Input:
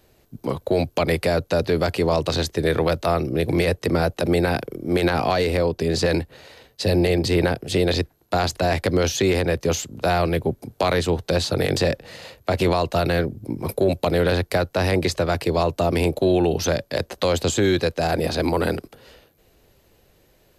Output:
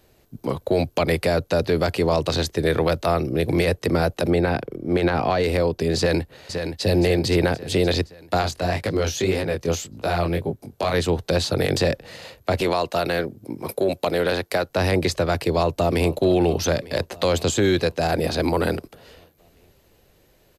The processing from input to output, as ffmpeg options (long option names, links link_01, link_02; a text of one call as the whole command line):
ffmpeg -i in.wav -filter_complex "[0:a]asettb=1/sr,asplit=3[link_01][link_02][link_03];[link_01]atrim=end=4.304[link_04];[link_02]atrim=start=4.3:end=5.44,asetpts=PTS-STARTPTS,afade=type=in:duration=0.004:curve=qsin,afade=type=out:start_time=1.136:duration=0.004:curve=qsin,lowpass=frequency=2700:poles=1[link_05];[link_03]atrim=start=5.436[link_06];[link_04][link_05]acrossfade=duration=0.004:curve1=hsin:curve2=qsin[link_07];[link_07][link_06]acrossfade=duration=0.004:curve1=qsin:curve2=hsin,asplit=2[link_08][link_09];[link_09]afade=type=in:start_time=5.97:duration=0.01,afade=type=out:start_time=6.84:duration=0.01,aecho=0:1:520|1040|1560|2080|2600|3120:0.446684|0.223342|0.111671|0.0558354|0.0279177|0.0139589[link_10];[link_08][link_10]amix=inputs=2:normalize=0,asplit=3[link_11][link_12][link_13];[link_11]afade=type=out:start_time=8.41:duration=0.02[link_14];[link_12]flanger=delay=18.5:depth=5.4:speed=1.8,afade=type=in:start_time=8.41:duration=0.02,afade=type=out:start_time=10.93:duration=0.02[link_15];[link_13]afade=type=in:start_time=10.93:duration=0.02[link_16];[link_14][link_15][link_16]amix=inputs=3:normalize=0,asettb=1/sr,asplit=3[link_17][link_18][link_19];[link_17]atrim=end=12.614[link_20];[link_18]atrim=start=12.61:end=14.7,asetpts=PTS-STARTPTS,afade=type=in:duration=0.004:curve=qsin,afade=type=out:start_time=2.086:duration=0.004:curve=qsin,highpass=frequency=300:poles=1[link_21];[link_19]atrim=start=14.696[link_22];[link_20][link_21]acrossfade=duration=0.004:curve1=hsin:curve2=qsin[link_23];[link_23][link_22]acrossfade=duration=0.004:curve1=qsin:curve2=hsin,asplit=2[link_24][link_25];[link_25]afade=type=in:start_time=15.33:duration=0.01,afade=type=out:start_time=16.12:duration=0.01,aecho=0:1:450|900|1350|1800|2250|2700|3150|3600:0.141254|0.0988776|0.0692143|0.04845|0.033915|0.0237405|0.0166184|0.0116329[link_26];[link_24][link_26]amix=inputs=2:normalize=0" out.wav